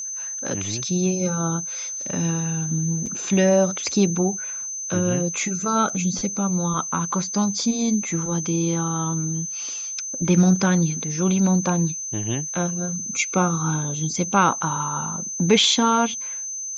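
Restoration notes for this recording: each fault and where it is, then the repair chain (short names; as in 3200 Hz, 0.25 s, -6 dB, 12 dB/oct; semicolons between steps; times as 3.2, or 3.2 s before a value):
tone 6200 Hz -28 dBFS
3.06 gap 4.9 ms
5.89–5.9 gap 5.1 ms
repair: notch 6200 Hz, Q 30; interpolate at 3.06, 4.9 ms; interpolate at 5.89, 5.1 ms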